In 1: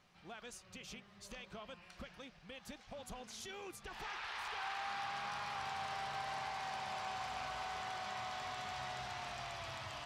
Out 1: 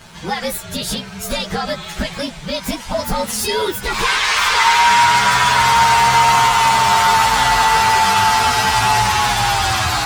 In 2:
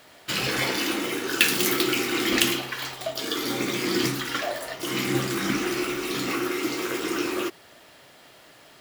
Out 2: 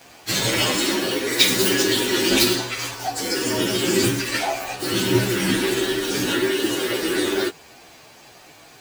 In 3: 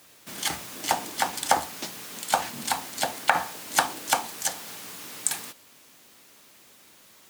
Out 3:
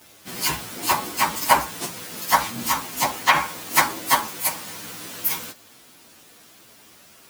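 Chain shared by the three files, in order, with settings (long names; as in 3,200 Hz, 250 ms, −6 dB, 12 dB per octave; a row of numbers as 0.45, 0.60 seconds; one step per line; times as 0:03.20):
partials spread apart or drawn together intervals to 115%
normalise the peak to −1.5 dBFS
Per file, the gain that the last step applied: +32.5, +9.0, +10.5 decibels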